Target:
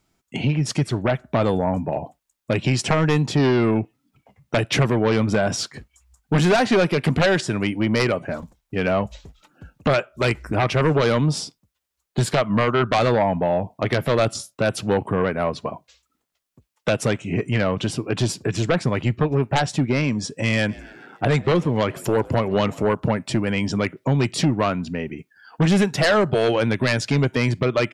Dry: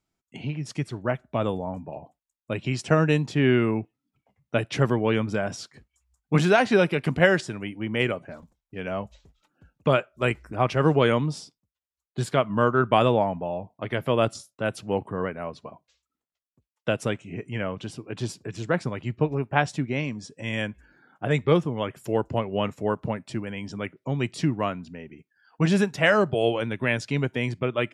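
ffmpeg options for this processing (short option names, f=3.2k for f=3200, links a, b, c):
-filter_complex "[0:a]acompressor=threshold=-29dB:ratio=2,aeval=exprs='0.237*sin(PI/2*2.82*val(0)/0.237)':c=same,asplit=3[a][b][c];[a]afade=t=out:st=20.68:d=0.02[d];[b]asplit=5[e][f][g][h][i];[f]adelay=138,afreqshift=63,volume=-23dB[j];[g]adelay=276,afreqshift=126,volume=-27.4dB[k];[h]adelay=414,afreqshift=189,volume=-31.9dB[l];[i]adelay=552,afreqshift=252,volume=-36.3dB[m];[e][j][k][l][m]amix=inputs=5:normalize=0,afade=t=in:st=20.68:d=0.02,afade=t=out:st=22.89:d=0.02[n];[c]afade=t=in:st=22.89:d=0.02[o];[d][n][o]amix=inputs=3:normalize=0"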